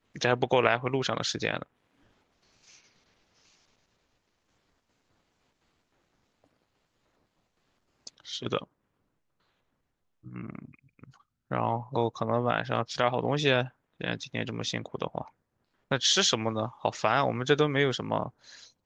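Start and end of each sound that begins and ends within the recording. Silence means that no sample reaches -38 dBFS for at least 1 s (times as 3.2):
8.07–8.64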